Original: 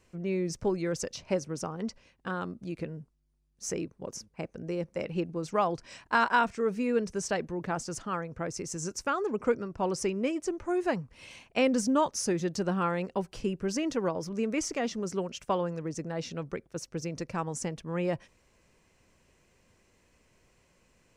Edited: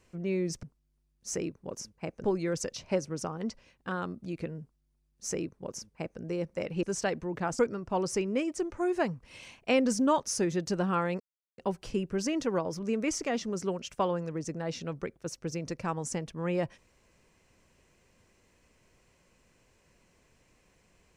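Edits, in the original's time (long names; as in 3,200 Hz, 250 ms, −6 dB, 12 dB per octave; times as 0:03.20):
0:02.99–0:04.60: duplicate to 0:00.63
0:05.22–0:07.10: remove
0:07.86–0:09.47: remove
0:13.08: splice in silence 0.38 s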